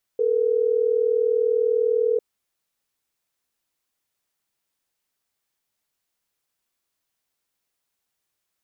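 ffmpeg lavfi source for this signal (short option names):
-f lavfi -i "aevalsrc='0.0944*(sin(2*PI*440*t)+sin(2*PI*480*t))*clip(min(mod(t,6),2-mod(t,6))/0.005,0,1)':d=3.12:s=44100"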